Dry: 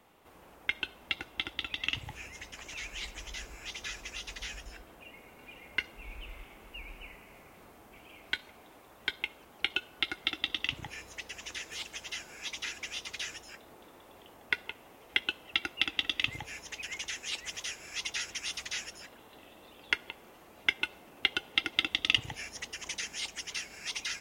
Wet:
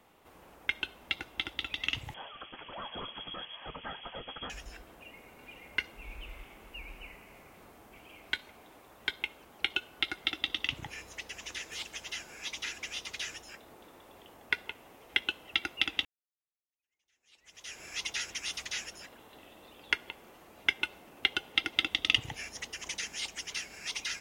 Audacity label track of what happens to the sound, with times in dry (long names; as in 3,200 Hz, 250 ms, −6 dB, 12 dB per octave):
2.140000	4.500000	voice inversion scrambler carrier 3,300 Hz
16.050000	17.790000	fade in exponential